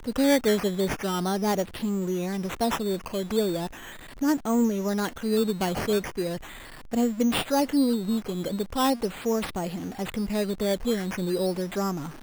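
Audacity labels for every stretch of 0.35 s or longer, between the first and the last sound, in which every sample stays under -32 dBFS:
3.670000	4.220000	silence
6.370000	6.930000	silence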